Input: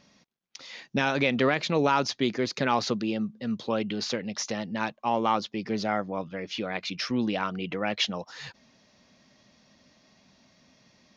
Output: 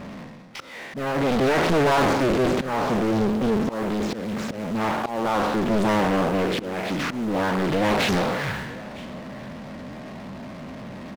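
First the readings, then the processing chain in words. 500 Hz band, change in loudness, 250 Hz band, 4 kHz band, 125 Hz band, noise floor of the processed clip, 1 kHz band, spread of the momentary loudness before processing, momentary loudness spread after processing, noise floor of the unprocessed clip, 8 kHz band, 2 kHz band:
+7.0 dB, +5.0 dB, +6.5 dB, +0.5 dB, +8.0 dB, -38 dBFS, +5.0 dB, 10 LU, 17 LU, -63 dBFS, no reading, +4.0 dB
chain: spectral sustain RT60 0.81 s; Bessel low-pass 1.2 kHz, order 2; slow attack 767 ms; in parallel at -5 dB: word length cut 8-bit, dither none; on the sum: saturation -21 dBFS, distortion -9 dB; power-law waveshaper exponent 0.5; on a send: delay 959 ms -20.5 dB; on the sum: loudspeaker Doppler distortion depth 1 ms; trim +5 dB

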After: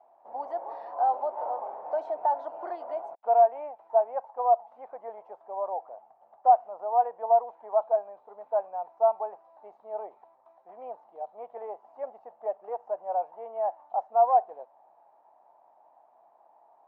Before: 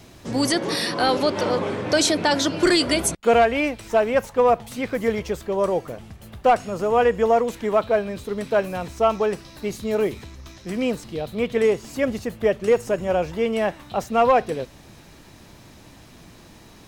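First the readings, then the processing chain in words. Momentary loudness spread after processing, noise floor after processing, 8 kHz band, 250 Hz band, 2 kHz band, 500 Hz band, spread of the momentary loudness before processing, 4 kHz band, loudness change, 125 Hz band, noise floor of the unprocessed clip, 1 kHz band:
20 LU, -62 dBFS, under -40 dB, under -30 dB, under -25 dB, -8.5 dB, 11 LU, under -40 dB, -6.0 dB, under -40 dB, -47 dBFS, -1.5 dB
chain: Butterworth band-pass 780 Hz, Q 3

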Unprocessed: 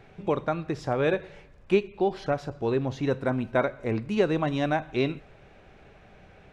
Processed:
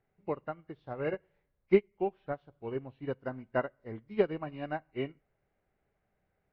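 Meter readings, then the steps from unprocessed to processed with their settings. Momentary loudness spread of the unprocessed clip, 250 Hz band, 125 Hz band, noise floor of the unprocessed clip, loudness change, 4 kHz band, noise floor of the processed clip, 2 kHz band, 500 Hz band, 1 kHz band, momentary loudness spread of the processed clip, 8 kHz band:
5 LU, -9.0 dB, -11.5 dB, -54 dBFS, -7.5 dB, -13.5 dB, -80 dBFS, -9.0 dB, -6.5 dB, -9.0 dB, 13 LU, no reading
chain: knee-point frequency compression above 1.6 kHz 1.5:1; upward expansion 2.5:1, over -34 dBFS

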